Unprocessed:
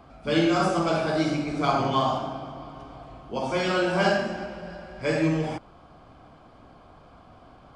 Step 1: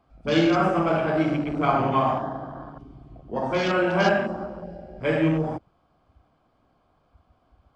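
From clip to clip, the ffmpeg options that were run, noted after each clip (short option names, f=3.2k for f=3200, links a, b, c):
-af "afwtdn=0.0178,volume=2dB"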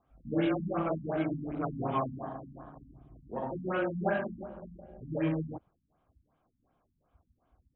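-af "afftfilt=real='re*lt(b*sr/1024,260*pow(4100/260,0.5+0.5*sin(2*PI*2.7*pts/sr)))':imag='im*lt(b*sr/1024,260*pow(4100/260,0.5+0.5*sin(2*PI*2.7*pts/sr)))':win_size=1024:overlap=0.75,volume=-8.5dB"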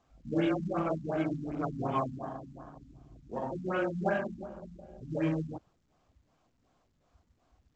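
-ar 16000 -c:a pcm_mulaw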